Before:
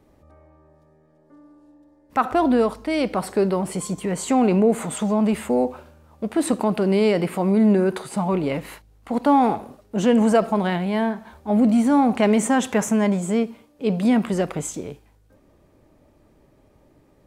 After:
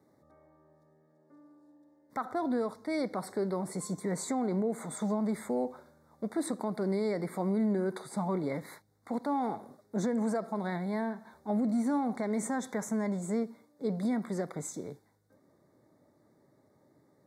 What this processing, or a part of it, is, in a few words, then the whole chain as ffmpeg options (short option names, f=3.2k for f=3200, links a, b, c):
PA system with an anti-feedback notch: -af "highpass=f=110:w=0.5412,highpass=f=110:w=1.3066,asuperstop=centerf=2800:order=20:qfactor=2.3,alimiter=limit=-14.5dB:level=0:latency=1:release=446,volume=-8dB"